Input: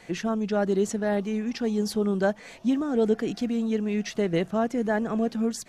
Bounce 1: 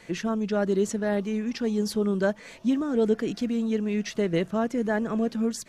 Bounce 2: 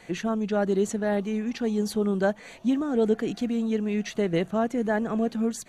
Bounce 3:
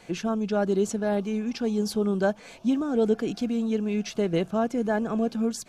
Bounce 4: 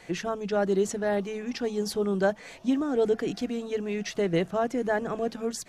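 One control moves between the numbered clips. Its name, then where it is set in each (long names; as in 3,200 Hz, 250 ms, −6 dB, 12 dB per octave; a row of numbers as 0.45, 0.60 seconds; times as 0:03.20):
notch filter, centre frequency: 750, 5,200, 1,900, 220 Hertz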